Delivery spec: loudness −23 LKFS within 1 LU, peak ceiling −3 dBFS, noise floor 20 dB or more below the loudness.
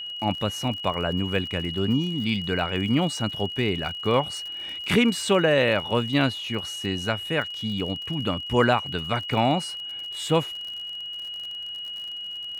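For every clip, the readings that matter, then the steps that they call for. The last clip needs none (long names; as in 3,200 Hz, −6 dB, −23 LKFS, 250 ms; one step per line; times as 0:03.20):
crackle rate 53 per second; interfering tone 2,900 Hz; level of the tone −32 dBFS; integrated loudness −25.5 LKFS; sample peak −7.5 dBFS; target loudness −23.0 LKFS
→ click removal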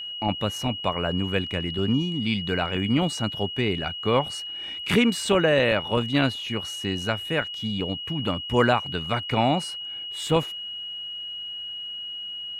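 crackle rate 0.079 per second; interfering tone 2,900 Hz; level of the tone −32 dBFS
→ notch filter 2,900 Hz, Q 30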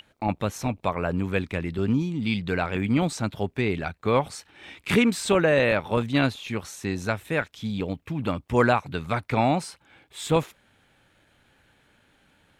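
interfering tone none found; integrated loudness −25.5 LKFS; sample peak −8.0 dBFS; target loudness −23.0 LKFS
→ level +2.5 dB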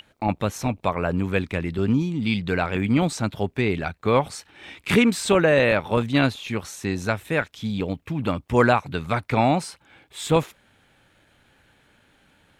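integrated loudness −23.0 LKFS; sample peak −5.5 dBFS; background noise floor −61 dBFS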